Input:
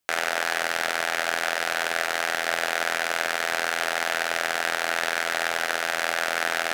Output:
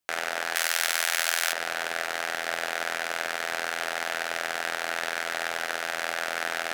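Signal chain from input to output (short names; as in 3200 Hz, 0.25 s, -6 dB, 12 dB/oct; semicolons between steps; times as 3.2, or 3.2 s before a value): 0.55–1.53 tilt +4 dB/oct; gain -4.5 dB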